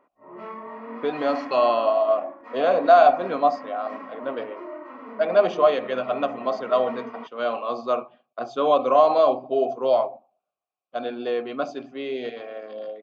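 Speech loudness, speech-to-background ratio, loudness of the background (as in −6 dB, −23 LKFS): −22.5 LKFS, 16.5 dB, −39.0 LKFS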